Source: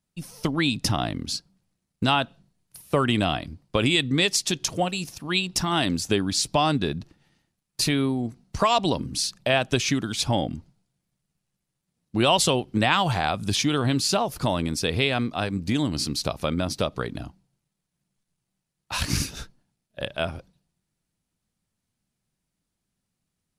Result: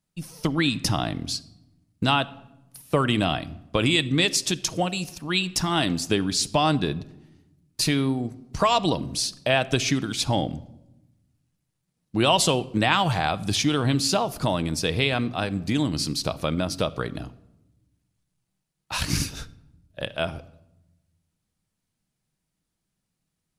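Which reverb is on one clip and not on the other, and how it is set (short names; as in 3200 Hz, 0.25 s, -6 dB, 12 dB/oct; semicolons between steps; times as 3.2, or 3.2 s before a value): shoebox room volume 3900 m³, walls furnished, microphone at 0.58 m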